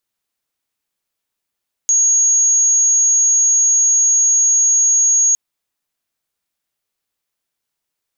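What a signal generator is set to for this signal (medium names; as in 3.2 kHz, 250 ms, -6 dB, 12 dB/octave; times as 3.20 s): tone sine 6.62 kHz -10 dBFS 3.46 s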